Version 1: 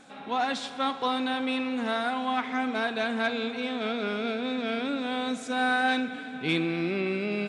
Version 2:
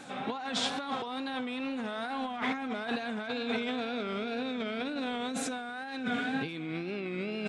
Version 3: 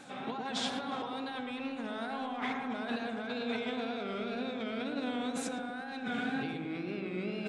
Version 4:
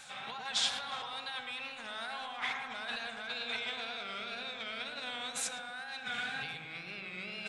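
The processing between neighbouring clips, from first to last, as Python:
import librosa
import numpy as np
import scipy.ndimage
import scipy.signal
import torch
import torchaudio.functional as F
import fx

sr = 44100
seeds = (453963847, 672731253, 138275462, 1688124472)

y1 = fx.peak_eq(x, sr, hz=130.0, db=7.5, octaves=0.32)
y1 = fx.over_compress(y1, sr, threshold_db=-35.0, ratio=-1.0)
y1 = fx.wow_flutter(y1, sr, seeds[0], rate_hz=2.1, depth_cents=88.0)
y2 = fx.echo_filtered(y1, sr, ms=110, feedback_pct=69, hz=1200.0, wet_db=-3.0)
y2 = y2 * librosa.db_to_amplitude(-4.0)
y3 = fx.tone_stack(y2, sr, knobs='10-0-10')
y3 = y3 * librosa.db_to_amplitude(7.5)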